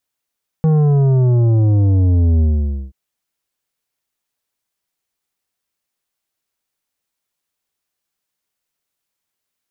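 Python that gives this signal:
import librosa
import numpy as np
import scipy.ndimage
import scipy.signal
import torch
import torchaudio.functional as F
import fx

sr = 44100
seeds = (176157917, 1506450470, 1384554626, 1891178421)

y = fx.sub_drop(sr, level_db=-11, start_hz=160.0, length_s=2.28, drive_db=9.5, fade_s=0.51, end_hz=65.0)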